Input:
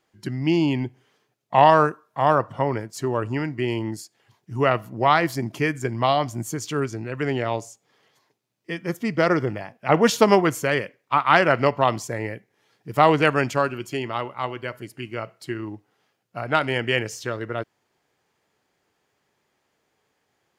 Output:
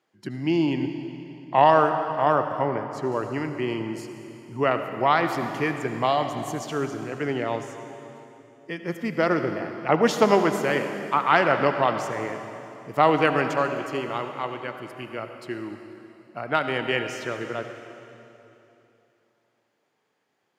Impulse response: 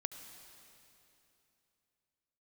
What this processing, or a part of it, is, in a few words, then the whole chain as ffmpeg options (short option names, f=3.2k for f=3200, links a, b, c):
swimming-pool hall: -filter_complex "[0:a]highpass=160[a];[1:a]atrim=start_sample=2205[b];[a][b]afir=irnorm=-1:irlink=0,highshelf=f=5.1k:g=-7,asettb=1/sr,asplit=3[c][d][e];[c]atrim=end=2.664[f];[d]atrim=start=2.66:end=3.12,asetpts=PTS-STARTPTS,afade=t=in:d=0.004:c=qsin,afade=t=out:st=0.456:d=0.004:c=qsin,aemphasis=mode=reproduction:type=cd[g];[e]atrim=start=3.116[h];[f][g]acrossfade=d=0.004:c1=hsin:c2=qsin[i];[i][h]acrossfade=d=0.004:c1=qsin:c2=hsin"